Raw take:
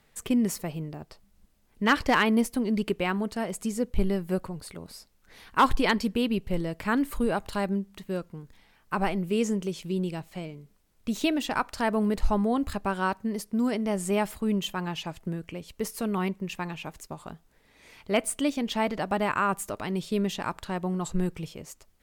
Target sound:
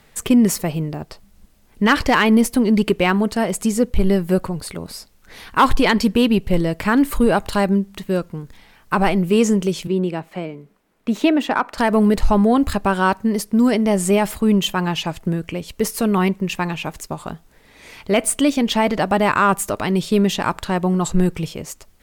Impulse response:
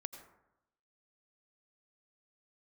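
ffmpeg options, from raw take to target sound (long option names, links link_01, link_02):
-filter_complex "[0:a]asettb=1/sr,asplit=3[link_01][link_02][link_03];[link_01]atrim=end=9.874[link_04];[link_02]atrim=start=9.87:end=11.78,asetpts=PTS-STARTPTS,afade=type=in:duration=0.004:curve=qsin,afade=type=out:start_time=1.906:duration=0.004:curve=qsin,acrossover=split=170 2600:gain=0.126 1 0.251[link_05][link_06][link_07];[link_05][link_06][link_07]amix=inputs=3:normalize=0[link_08];[link_03]atrim=start=11.776[link_09];[link_04][link_08]acrossfade=duration=0.004:curve1=hsin:curve2=qsin[link_10];[link_10][link_09]acrossfade=duration=0.004:curve1=qsin:curve2=hsin,aeval=exprs='0.251*(cos(1*acos(clip(val(0)/0.251,-1,1)))-cos(1*PI/2))+0.00891*(cos(5*acos(clip(val(0)/0.251,-1,1)))-cos(5*PI/2))':channel_layout=same,alimiter=level_in=15dB:limit=-1dB:release=50:level=0:latency=1,volume=-5dB"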